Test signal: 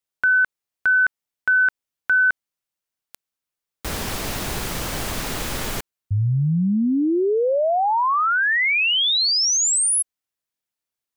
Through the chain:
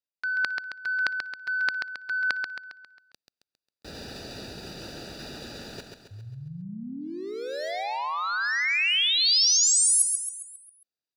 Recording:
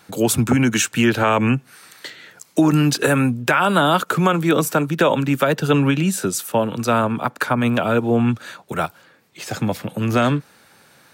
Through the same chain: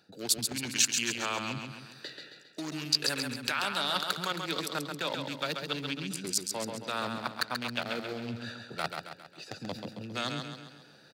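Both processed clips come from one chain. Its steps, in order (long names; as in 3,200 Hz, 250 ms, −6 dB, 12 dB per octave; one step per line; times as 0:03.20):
adaptive Wiener filter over 41 samples
parametric band 4,500 Hz +14.5 dB 0.6 octaves
reversed playback
downward compressor 12 to 1, threshold −32 dBFS
reversed playback
high-pass filter 160 Hz 6 dB per octave
tilt shelving filter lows −7.5 dB, about 1,300 Hz
on a send: repeating echo 135 ms, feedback 48%, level −5.5 dB
on the sum: level +4 dB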